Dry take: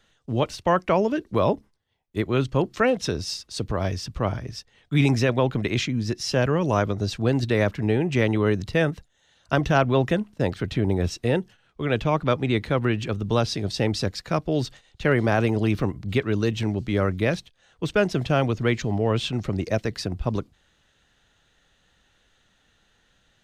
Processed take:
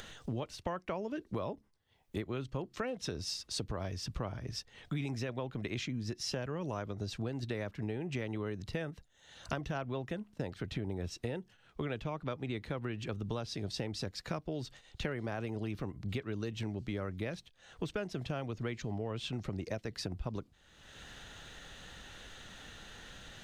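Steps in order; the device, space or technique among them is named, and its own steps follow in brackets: upward and downward compression (upward compressor, threshold -35 dBFS; compression 8:1, threshold -33 dBFS, peak gain reduction 18 dB); trim -1.5 dB

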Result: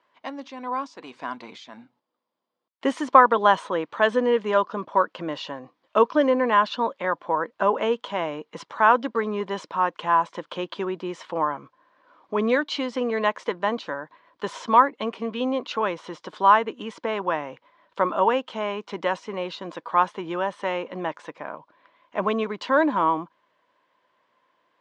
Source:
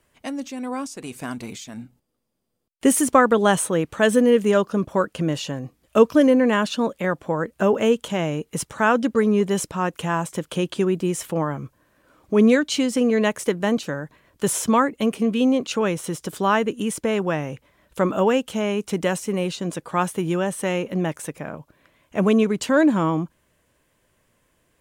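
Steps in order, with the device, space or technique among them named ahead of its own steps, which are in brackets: phone earpiece (cabinet simulation 380–4300 Hz, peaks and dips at 410 Hz -4 dB, 1 kHz +10 dB, 2.6 kHz -4 dB); trim -1 dB

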